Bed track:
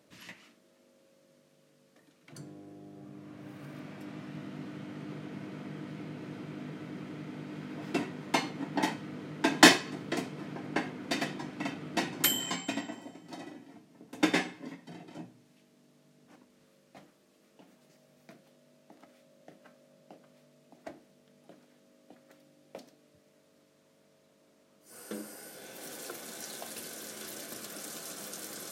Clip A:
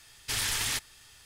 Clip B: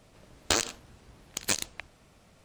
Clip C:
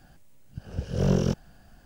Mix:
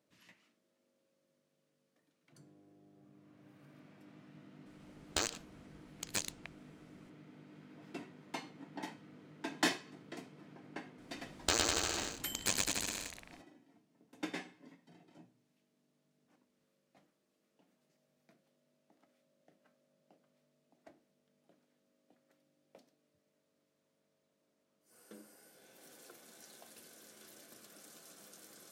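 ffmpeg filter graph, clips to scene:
ffmpeg -i bed.wav -i cue0.wav -i cue1.wav -filter_complex "[2:a]asplit=2[link_01][link_02];[0:a]volume=-14.5dB[link_03];[link_02]aecho=1:1:110|203.5|283|350.5|407.9|456.8|498.2|533.5|563.5|589:0.794|0.631|0.501|0.398|0.316|0.251|0.2|0.158|0.126|0.1[link_04];[link_01]atrim=end=2.44,asetpts=PTS-STARTPTS,volume=-9dB,afade=type=in:duration=0.004:curve=hsin,afade=type=out:start_time=2.436:duration=0.004:curve=hsin,adelay=4660[link_05];[link_04]atrim=end=2.44,asetpts=PTS-STARTPTS,volume=-6.5dB,afade=type=in:duration=0.004:curve=hsin,afade=type=out:start_time=2.436:duration=0.004:curve=hsin,adelay=484218S[link_06];[link_03][link_05][link_06]amix=inputs=3:normalize=0" out.wav

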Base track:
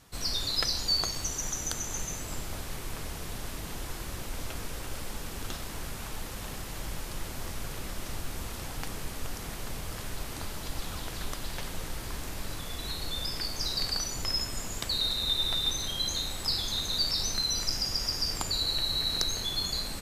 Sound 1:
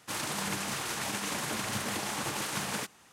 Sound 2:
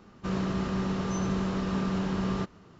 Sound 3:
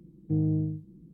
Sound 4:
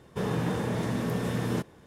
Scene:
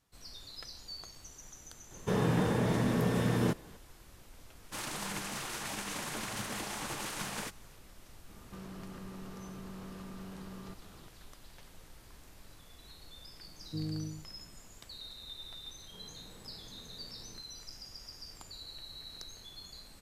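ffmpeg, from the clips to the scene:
ffmpeg -i bed.wav -i cue0.wav -i cue1.wav -i cue2.wav -i cue3.wav -filter_complex "[4:a]asplit=2[link_01][link_02];[0:a]volume=-18dB[link_03];[2:a]acompressor=threshold=-41dB:ratio=6:attack=3.2:release=140:knee=1:detection=peak[link_04];[link_02]acompressor=threshold=-39dB:ratio=6:attack=3.2:release=140:knee=1:detection=peak[link_05];[link_01]atrim=end=1.86,asetpts=PTS-STARTPTS,afade=type=in:duration=0.004:curve=hsin,afade=type=out:start_time=1.856:duration=0.004:curve=hsin,adelay=1910[link_06];[1:a]atrim=end=3.12,asetpts=PTS-STARTPTS,volume=-5dB,afade=type=in:duration=0.004:curve=hsin,afade=type=out:start_time=3.116:duration=0.004:curve=hsin,adelay=4640[link_07];[link_04]atrim=end=2.79,asetpts=PTS-STARTPTS,volume=-3dB,afade=type=in:duration=0.004:curve=hsin,afade=type=out:start_time=2.786:duration=0.004:curve=hsin,adelay=8290[link_08];[3:a]atrim=end=1.13,asetpts=PTS-STARTPTS,volume=-11dB,afade=type=in:duration=0.004:curve=hsin,afade=type=out:start_time=1.126:duration=0.004:curve=hsin,adelay=13430[link_09];[link_05]atrim=end=1.86,asetpts=PTS-STARTPTS,volume=-14.5dB,afade=type=in:duration=0.004:curve=hsin,afade=type=out:start_time=1.856:duration=0.004:curve=hsin,adelay=15780[link_10];[link_03][link_06][link_07][link_08][link_09][link_10]amix=inputs=6:normalize=0" out.wav

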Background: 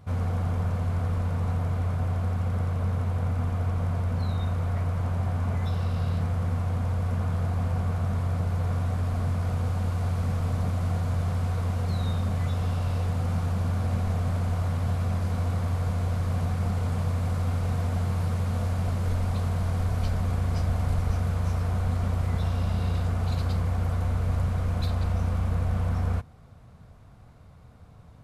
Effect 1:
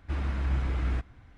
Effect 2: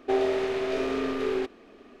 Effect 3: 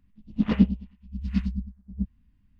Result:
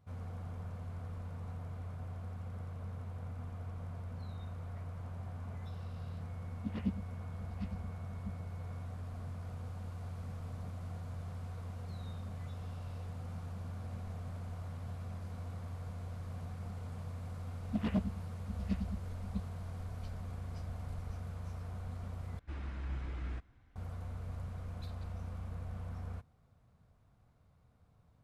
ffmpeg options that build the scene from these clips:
ffmpeg -i bed.wav -i cue0.wav -i cue1.wav -i cue2.wav -filter_complex "[3:a]asplit=2[link_01][link_02];[0:a]volume=-16.5dB[link_03];[link_01]aeval=exprs='val(0)+0.00224*sin(2*PI*2200*n/s)':channel_layout=same[link_04];[link_02]asoftclip=type=hard:threshold=-17dB[link_05];[link_03]asplit=2[link_06][link_07];[link_06]atrim=end=22.394[link_08];[1:a]atrim=end=1.37,asetpts=PTS-STARTPTS,volume=-11.5dB[link_09];[link_07]atrim=start=23.756[link_10];[link_04]atrim=end=2.59,asetpts=PTS-STARTPTS,volume=-16.5dB,afade=type=in:duration=0.004:curve=hsin,afade=type=out:start_time=2.586:duration=0.004:curve=hsin,adelay=276066S[link_11];[link_05]atrim=end=2.59,asetpts=PTS-STARTPTS,volume=-9.5dB,afade=type=in:duration=0.004:curve=hsin,afade=type=out:start_time=2.586:duration=0.004:curve=hsin,adelay=17350[link_12];[link_08][link_09]acrossfade=duration=0.004:curve1=hsin:curve2=hsin[link_13];[link_13][link_10]acrossfade=duration=0.004:curve1=hsin:curve2=hsin[link_14];[link_14][link_11][link_12]amix=inputs=3:normalize=0" out.wav

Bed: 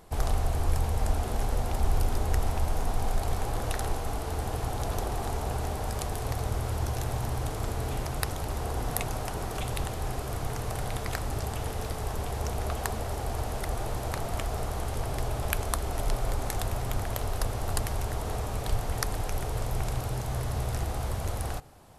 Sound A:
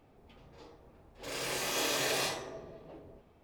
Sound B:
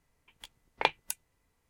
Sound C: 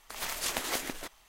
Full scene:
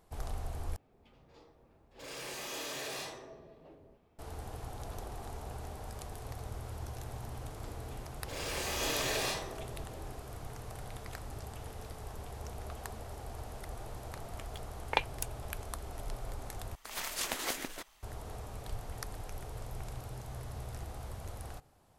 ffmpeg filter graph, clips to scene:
ffmpeg -i bed.wav -i cue0.wav -i cue1.wav -i cue2.wav -filter_complex "[1:a]asplit=2[link_01][link_02];[0:a]volume=-12dB[link_03];[link_01]asoftclip=type=tanh:threshold=-30dB[link_04];[link_03]asplit=3[link_05][link_06][link_07];[link_05]atrim=end=0.764[link_08];[link_04]atrim=end=3.43,asetpts=PTS-STARTPTS,volume=-5.5dB[link_09];[link_06]atrim=start=4.186:end=16.754[link_10];[3:a]atrim=end=1.28,asetpts=PTS-STARTPTS,volume=-3dB[link_11];[link_07]atrim=start=18.026[link_12];[link_02]atrim=end=3.43,asetpts=PTS-STARTPTS,volume=-2dB,afade=type=in:duration=0.004:curve=hsin,afade=type=out:start_time=3.426:duration=0.004:curve=hsin,adelay=7050[link_13];[2:a]atrim=end=1.69,asetpts=PTS-STARTPTS,volume=-3dB,afade=type=in:duration=0.004:curve=hsin,afade=type=out:start_time=1.686:duration=0.004:curve=hsin,adelay=622692S[link_14];[link_08][link_09]acrossfade=duration=0.004:curve1=hsin:curve2=hsin[link_15];[link_15][link_10]acrossfade=duration=0.004:curve1=hsin:curve2=hsin[link_16];[link_16][link_11]acrossfade=duration=0.004:curve1=hsin:curve2=hsin[link_17];[link_17][link_12]acrossfade=duration=0.004:curve1=hsin:curve2=hsin[link_18];[link_18][link_13][link_14]amix=inputs=3:normalize=0" out.wav

